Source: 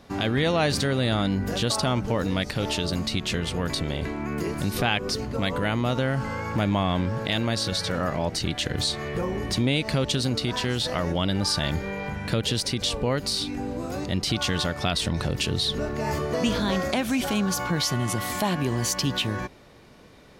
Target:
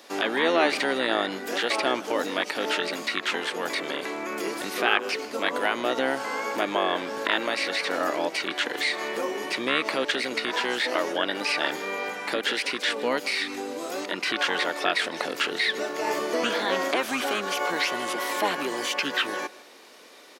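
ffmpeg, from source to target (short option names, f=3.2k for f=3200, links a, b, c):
-filter_complex "[0:a]asplit=2[a][b];[b]asetrate=22050,aresample=44100,atempo=2,volume=-2dB[c];[a][c]amix=inputs=2:normalize=0,highpass=f=320:w=0.5412,highpass=f=320:w=1.3066,highshelf=f=2.5k:g=10,acrossover=split=2800[d][e];[e]acompressor=threshold=-37dB:ratio=4:attack=1:release=60[f];[d][f]amix=inputs=2:normalize=0,asplit=2[g][h];[h]aecho=0:1:157:0.1[i];[g][i]amix=inputs=2:normalize=0"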